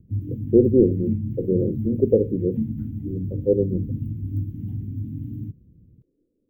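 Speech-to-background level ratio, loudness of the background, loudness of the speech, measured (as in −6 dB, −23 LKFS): 7.5 dB, −29.5 LKFS, −22.0 LKFS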